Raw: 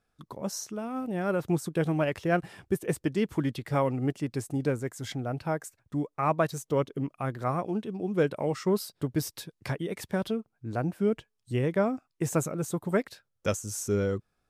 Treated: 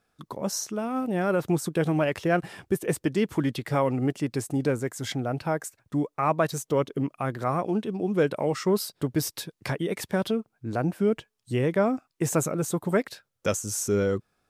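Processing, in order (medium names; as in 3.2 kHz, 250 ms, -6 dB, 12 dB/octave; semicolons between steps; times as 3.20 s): bass shelf 77 Hz -11 dB; in parallel at -0.5 dB: peak limiter -24.5 dBFS, peak gain reduction 12 dB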